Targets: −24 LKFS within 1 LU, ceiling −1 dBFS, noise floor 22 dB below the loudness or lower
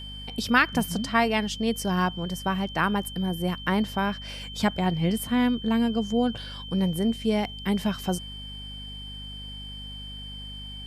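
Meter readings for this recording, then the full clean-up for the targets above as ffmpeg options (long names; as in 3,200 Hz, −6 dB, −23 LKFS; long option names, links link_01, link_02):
mains hum 50 Hz; hum harmonics up to 250 Hz; level of the hum −39 dBFS; interfering tone 3,100 Hz; level of the tone −39 dBFS; integrated loudness −26.0 LKFS; sample peak −7.5 dBFS; target loudness −24.0 LKFS
→ -af "bandreject=frequency=50:width_type=h:width=4,bandreject=frequency=100:width_type=h:width=4,bandreject=frequency=150:width_type=h:width=4,bandreject=frequency=200:width_type=h:width=4,bandreject=frequency=250:width_type=h:width=4"
-af "bandreject=frequency=3100:width=30"
-af "volume=2dB"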